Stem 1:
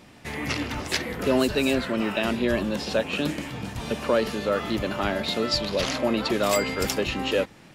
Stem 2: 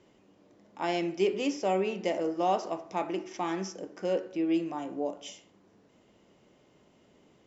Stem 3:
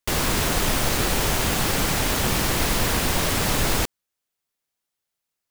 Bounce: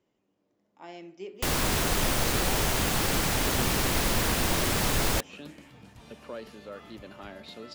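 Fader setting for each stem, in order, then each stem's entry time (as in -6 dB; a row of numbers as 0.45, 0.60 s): -17.5, -14.0, -4.0 dB; 2.20, 0.00, 1.35 s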